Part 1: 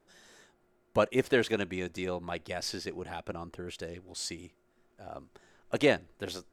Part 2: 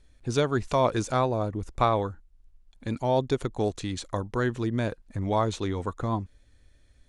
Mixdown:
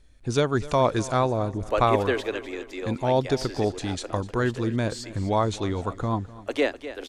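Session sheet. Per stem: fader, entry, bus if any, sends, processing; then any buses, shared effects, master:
+1.5 dB, 0.75 s, no send, echo send -13 dB, Chebyshev high-pass 260 Hz, order 5; treble shelf 5.8 kHz -5.5 dB
+2.0 dB, 0.00 s, no send, echo send -18.5 dB, none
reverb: none
echo: feedback delay 251 ms, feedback 41%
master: none

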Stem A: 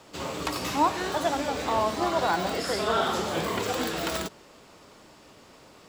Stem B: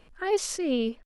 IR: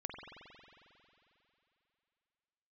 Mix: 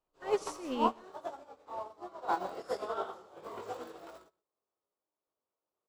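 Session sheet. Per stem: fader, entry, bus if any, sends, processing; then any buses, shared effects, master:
-7.0 dB, 0.00 s, no send, echo send -13 dB, high-order bell 670 Hz +10.5 dB 2.3 oct; random-step tremolo, depth 55%; chorus 1.4 Hz, delay 19 ms, depth 2.2 ms
-3.5 dB, 0.00 s, no send, echo send -11.5 dB, none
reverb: none
echo: delay 124 ms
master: upward expansion 2.5:1, over -45 dBFS

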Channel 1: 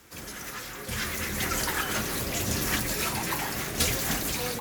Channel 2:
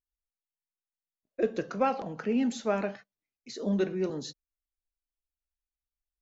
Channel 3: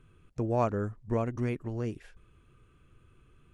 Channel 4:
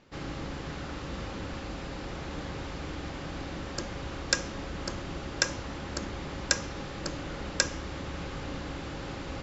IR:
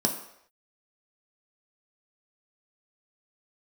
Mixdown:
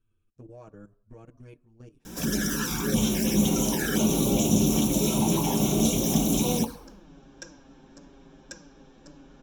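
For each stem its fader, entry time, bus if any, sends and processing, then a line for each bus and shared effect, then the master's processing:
+3.0 dB, 2.05 s, bus A, send -4 dB, hum 60 Hz, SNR 24 dB; compression 5:1, threshold -34 dBFS, peak gain reduction 12.5 dB
-12.0 dB, 2.45 s, no bus, no send, none
-14.0 dB, 0.00 s, bus A, send -21.5 dB, level held to a coarse grid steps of 16 dB
-18.0 dB, 2.00 s, no bus, send -12 dB, none
bus A: 0.0 dB, treble shelf 2.5 kHz +8.5 dB; peak limiter -20.5 dBFS, peak gain reduction 9 dB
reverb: on, pre-delay 3 ms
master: bass shelf 110 Hz +12 dB; band-stop 2 kHz, Q 5.8; touch-sensitive flanger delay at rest 9.3 ms, full sweep at -19.5 dBFS

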